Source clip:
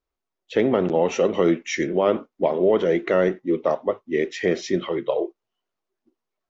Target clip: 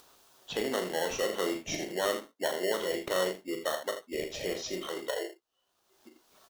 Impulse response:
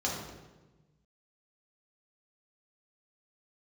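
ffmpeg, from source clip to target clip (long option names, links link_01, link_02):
-filter_complex "[0:a]highpass=frequency=1100:poles=1,acrossover=split=2400[link_01][link_02];[link_01]acrusher=samples=18:mix=1:aa=0.000001[link_03];[link_03][link_02]amix=inputs=2:normalize=0,aecho=1:1:38|80:0.422|0.316,acompressor=mode=upward:threshold=-29dB:ratio=2.5,volume=-4.5dB"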